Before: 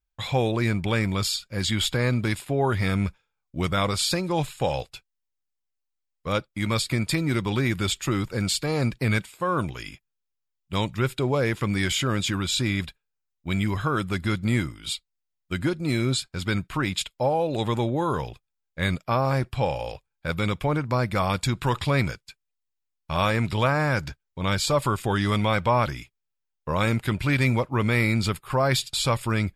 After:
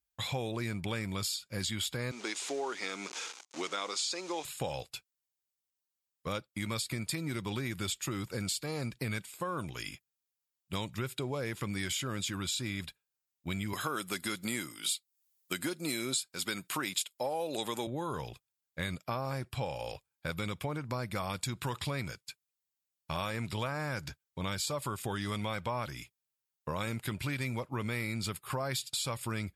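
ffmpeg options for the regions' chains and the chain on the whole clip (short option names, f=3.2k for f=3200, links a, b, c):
-filter_complex "[0:a]asettb=1/sr,asplit=3[a][b][c];[a]atrim=end=2.114[d];[b]atrim=start=2.11:end=4.45,asetpts=PTS-STARTPTS,afade=t=in:d=0.004:c=qsin,afade=t=out:st=2.336:d=0.004:c=qsin,aeval=exprs='val(0)+0.5*0.0211*sgn(val(0))':c=same,acrusher=bits=6:mix=0:aa=0.5,highpass=f=320:w=0.5412,highpass=f=320:w=1.3066,equalizer=f=610:t=q:w=4:g=-5,equalizer=f=1.7k:t=q:w=4:g=-3,equalizer=f=6.4k:t=q:w=4:g=5,lowpass=f=7.6k:w=0.5412,lowpass=f=7.6k:w=1.3066[e];[c]atrim=start=4.446[f];[d][e]acrossfade=d=0.004:c1=hsin:c2=qsin[g];[g][f]acrossfade=d=0.004:c1=qsin:c2=hsin,asettb=1/sr,asplit=3[h][i][j];[h]atrim=end=13.734[k];[i]atrim=start=13.73:end=17.87,asetpts=PTS-STARTPTS,afade=t=in:d=0.004:c=qsin,afade=t=out:st=4.136:d=0.004:c=qsin,highpass=250,aemphasis=mode=production:type=cd,acontrast=30[l];[j]atrim=start=17.866[m];[k][l]acrossfade=d=0.004:c1=hsin:c2=qsin[n];[n][m]acrossfade=d=0.004:c1=qsin:c2=hsin,highpass=75,aemphasis=mode=production:type=cd,acompressor=threshold=-30dB:ratio=4,volume=-3.5dB"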